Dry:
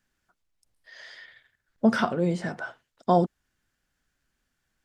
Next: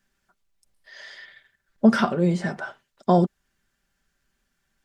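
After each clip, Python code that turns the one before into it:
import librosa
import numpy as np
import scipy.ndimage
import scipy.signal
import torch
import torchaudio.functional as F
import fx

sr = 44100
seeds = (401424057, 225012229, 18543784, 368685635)

y = x + 0.44 * np.pad(x, (int(5.1 * sr / 1000.0), 0))[:len(x)]
y = F.gain(torch.from_numpy(y), 2.5).numpy()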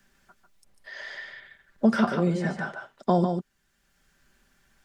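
y = x + 10.0 ** (-7.0 / 20.0) * np.pad(x, (int(146 * sr / 1000.0), 0))[:len(x)]
y = fx.band_squash(y, sr, depth_pct=40)
y = F.gain(torch.from_numpy(y), -3.0).numpy()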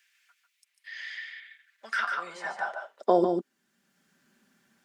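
y = fx.filter_sweep_highpass(x, sr, from_hz=2300.0, to_hz=210.0, start_s=1.73, end_s=3.72, q=2.6)
y = F.gain(torch.from_numpy(y), -2.5).numpy()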